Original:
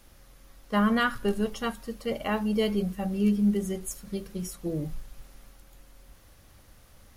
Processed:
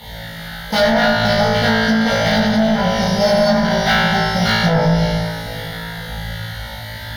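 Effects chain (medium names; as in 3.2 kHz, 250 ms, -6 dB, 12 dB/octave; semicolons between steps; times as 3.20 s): peaking EQ 1.2 kHz -6.5 dB 3 oct; in parallel at +1 dB: compression, threshold -34 dBFS, peak gain reduction 12.5 dB; on the sum: careless resampling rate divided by 8×, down none, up hold; LFO notch saw down 1.5 Hz 380–1600 Hz; sine folder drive 11 dB, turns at -14 dBFS; high-pass 110 Hz 12 dB/octave; peaking EQ 380 Hz -6.5 dB 1.5 oct; flutter echo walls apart 3.1 m, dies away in 1.4 s; low-pass that closes with the level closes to 1.9 kHz, closed at -9.5 dBFS; hard clipper -16 dBFS, distortion -9 dB; static phaser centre 1.7 kHz, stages 8; on a send: echo whose repeats swap between lows and highs 264 ms, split 1.5 kHz, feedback 62%, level -7 dB; on the sum: trim +8 dB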